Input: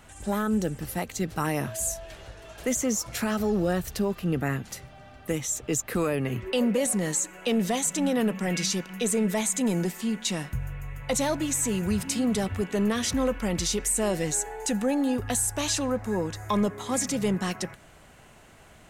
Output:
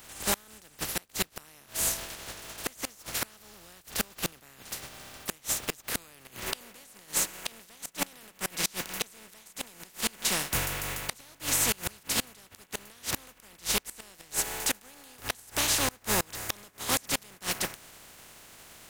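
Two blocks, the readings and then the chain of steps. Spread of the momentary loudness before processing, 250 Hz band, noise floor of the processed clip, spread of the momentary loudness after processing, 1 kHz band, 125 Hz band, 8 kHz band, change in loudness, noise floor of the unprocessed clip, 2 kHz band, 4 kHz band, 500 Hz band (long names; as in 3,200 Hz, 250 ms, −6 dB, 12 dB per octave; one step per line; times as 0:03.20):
7 LU, −16.0 dB, −59 dBFS, 20 LU, −4.5 dB, −12.0 dB, −2.0 dB, −4.0 dB, −52 dBFS, 0.0 dB, +1.5 dB, −12.5 dB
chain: compressing power law on the bin magnitudes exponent 0.3
gate with flip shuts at −15 dBFS, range −28 dB
level +1.5 dB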